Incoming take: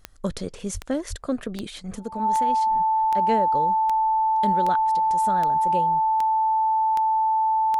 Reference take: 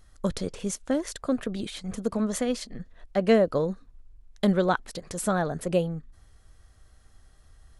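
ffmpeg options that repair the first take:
ffmpeg -i in.wav -filter_complex "[0:a]adeclick=threshold=4,bandreject=frequency=880:width=30,asplit=3[link_01][link_02][link_03];[link_01]afade=type=out:start_time=0.73:duration=0.02[link_04];[link_02]highpass=frequency=140:width=0.5412,highpass=frequency=140:width=1.3066,afade=type=in:start_time=0.73:duration=0.02,afade=type=out:start_time=0.85:duration=0.02[link_05];[link_03]afade=type=in:start_time=0.85:duration=0.02[link_06];[link_04][link_05][link_06]amix=inputs=3:normalize=0,asplit=3[link_07][link_08][link_09];[link_07]afade=type=out:start_time=1.09:duration=0.02[link_10];[link_08]highpass=frequency=140:width=0.5412,highpass=frequency=140:width=1.3066,afade=type=in:start_time=1.09:duration=0.02,afade=type=out:start_time=1.21:duration=0.02[link_11];[link_09]afade=type=in:start_time=1.21:duration=0.02[link_12];[link_10][link_11][link_12]amix=inputs=3:normalize=0,asetnsamples=nb_out_samples=441:pad=0,asendcmd='2.03 volume volume 5.5dB',volume=0dB" out.wav

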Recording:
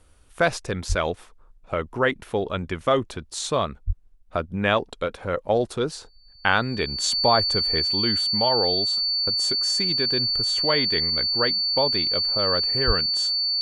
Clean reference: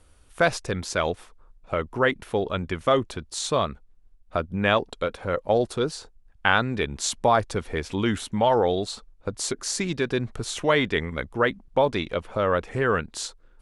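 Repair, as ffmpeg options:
ffmpeg -i in.wav -filter_complex "[0:a]bandreject=frequency=4500:width=30,asplit=3[link_01][link_02][link_03];[link_01]afade=type=out:start_time=0.88:duration=0.02[link_04];[link_02]highpass=frequency=140:width=0.5412,highpass=frequency=140:width=1.3066,afade=type=in:start_time=0.88:duration=0.02,afade=type=out:start_time=1:duration=0.02[link_05];[link_03]afade=type=in:start_time=1:duration=0.02[link_06];[link_04][link_05][link_06]amix=inputs=3:normalize=0,asplit=3[link_07][link_08][link_09];[link_07]afade=type=out:start_time=3.86:duration=0.02[link_10];[link_08]highpass=frequency=140:width=0.5412,highpass=frequency=140:width=1.3066,afade=type=in:start_time=3.86:duration=0.02,afade=type=out:start_time=3.98:duration=0.02[link_11];[link_09]afade=type=in:start_time=3.98:duration=0.02[link_12];[link_10][link_11][link_12]amix=inputs=3:normalize=0,asplit=3[link_13][link_14][link_15];[link_13]afade=type=out:start_time=12.86:duration=0.02[link_16];[link_14]highpass=frequency=140:width=0.5412,highpass=frequency=140:width=1.3066,afade=type=in:start_time=12.86:duration=0.02,afade=type=out:start_time=12.98:duration=0.02[link_17];[link_15]afade=type=in:start_time=12.98:duration=0.02[link_18];[link_16][link_17][link_18]amix=inputs=3:normalize=0,asetnsamples=nb_out_samples=441:pad=0,asendcmd='7.82 volume volume 3dB',volume=0dB" out.wav

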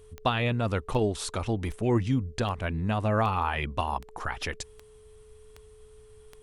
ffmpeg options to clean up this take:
ffmpeg -i in.wav -af "adeclick=threshold=4,bandreject=frequency=430:width=30" out.wav

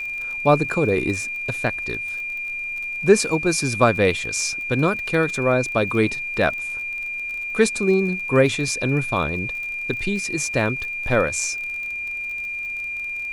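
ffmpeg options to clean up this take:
ffmpeg -i in.wav -af "adeclick=threshold=4,bandreject=frequency=2400:width=30,agate=range=-21dB:threshold=-21dB" out.wav

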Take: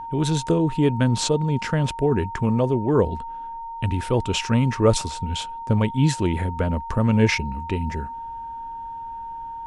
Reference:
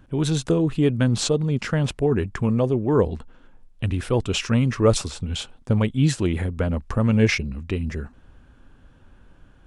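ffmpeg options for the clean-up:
ffmpeg -i in.wav -af "bandreject=frequency=920:width=30" out.wav

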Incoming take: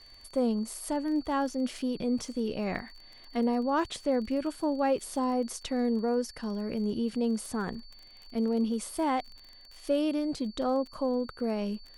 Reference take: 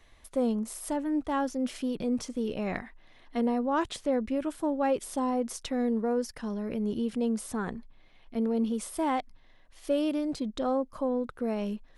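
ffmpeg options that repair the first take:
ffmpeg -i in.wav -af "adeclick=threshold=4,bandreject=frequency=4500:width=30" out.wav

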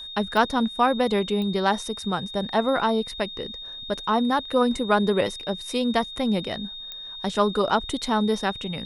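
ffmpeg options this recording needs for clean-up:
ffmpeg -i in.wav -af "adeclick=threshold=4,bandreject=frequency=3700:width=30" out.wav

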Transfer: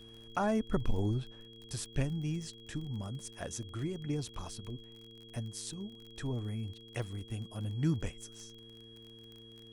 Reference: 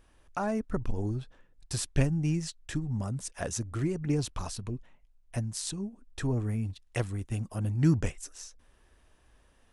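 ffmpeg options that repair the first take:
ffmpeg -i in.wav -af "adeclick=threshold=4,bandreject=frequency=113.3:width_type=h:width=4,bandreject=frequency=226.6:width_type=h:width=4,bandreject=frequency=339.9:width_type=h:width=4,bandreject=frequency=453.2:width_type=h:width=4,bandreject=frequency=3300:width=30,asetnsamples=nb_out_samples=441:pad=0,asendcmd='1.48 volume volume 7dB',volume=0dB" out.wav

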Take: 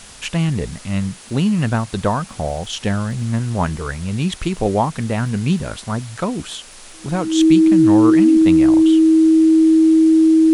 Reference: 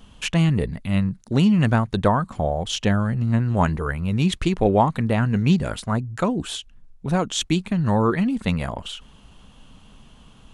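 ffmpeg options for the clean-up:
ffmpeg -i in.wav -af "adeclick=threshold=4,bandreject=frequency=320:width=30,afwtdn=0.013" out.wav

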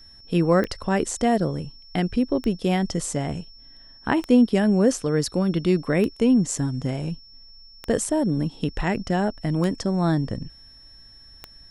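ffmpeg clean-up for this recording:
ffmpeg -i in.wav -af "adeclick=threshold=4,bandreject=frequency=5400:width=30" out.wav

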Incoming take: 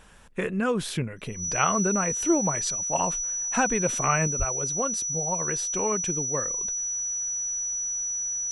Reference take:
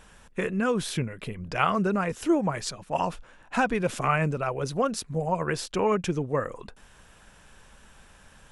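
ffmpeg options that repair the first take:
ffmpeg -i in.wav -filter_complex "[0:a]bandreject=frequency=5900:width=30,asplit=3[link_01][link_02][link_03];[link_01]afade=type=out:start_time=4.38:duration=0.02[link_04];[link_02]highpass=frequency=140:width=0.5412,highpass=frequency=140:width=1.3066,afade=type=in:start_time=4.38:duration=0.02,afade=type=out:start_time=4.5:duration=0.02[link_05];[link_03]afade=type=in:start_time=4.5:duration=0.02[link_06];[link_04][link_05][link_06]amix=inputs=3:normalize=0,asetnsamples=nb_out_samples=441:pad=0,asendcmd='4.27 volume volume 4dB',volume=0dB" out.wav

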